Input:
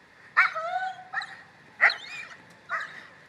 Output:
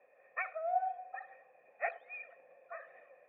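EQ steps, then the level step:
formant resonators in series e
formant filter a
+15.5 dB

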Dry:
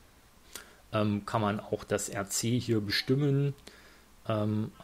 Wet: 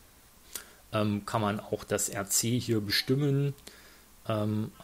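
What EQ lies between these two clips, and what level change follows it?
high-shelf EQ 6,600 Hz +9.5 dB
0.0 dB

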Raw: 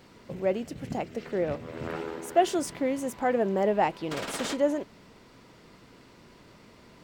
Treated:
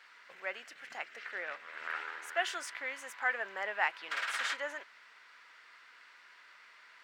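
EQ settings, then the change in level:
high-pass with resonance 1,600 Hz, resonance Q 2.4
low-pass filter 3,000 Hz 6 dB per octave
0.0 dB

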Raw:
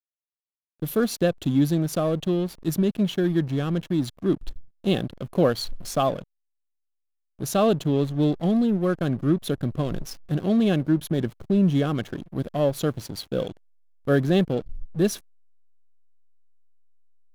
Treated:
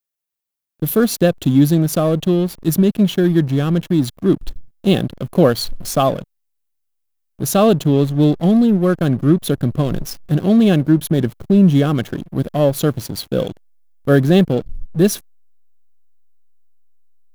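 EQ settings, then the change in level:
parametric band 150 Hz +2.5 dB 2.2 octaves
high-shelf EQ 11,000 Hz +9.5 dB
+6.5 dB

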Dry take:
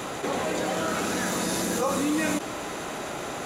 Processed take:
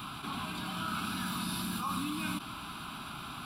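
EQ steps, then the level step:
flat-topped bell 530 Hz −9 dB
phaser with its sweep stopped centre 1,900 Hz, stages 6
−3.0 dB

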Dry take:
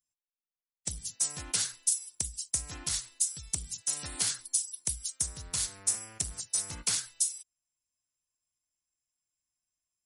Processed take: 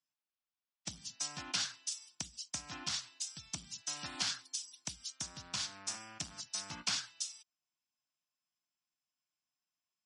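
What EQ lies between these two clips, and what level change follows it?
loudspeaker in its box 200–5,200 Hz, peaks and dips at 500 Hz −6 dB, 2,000 Hz −5 dB, 4,100 Hz −4 dB
parametric band 420 Hz −12 dB 0.5 octaves
+2.5 dB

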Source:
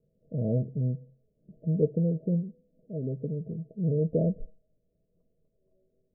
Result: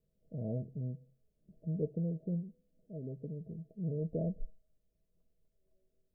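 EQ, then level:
octave-band graphic EQ 125/250/500 Hz −9/−6/−10 dB
0.0 dB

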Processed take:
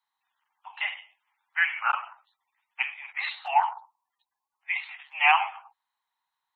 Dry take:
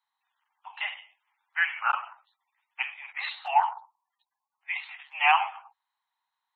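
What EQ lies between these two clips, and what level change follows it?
dynamic equaliser 2,200 Hz, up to +4 dB, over −41 dBFS, Q 3.2
0.0 dB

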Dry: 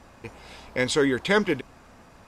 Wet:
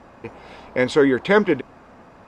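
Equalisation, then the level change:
low-pass filter 1,200 Hz 6 dB per octave
low-shelf EQ 120 Hz −12 dB
+8.0 dB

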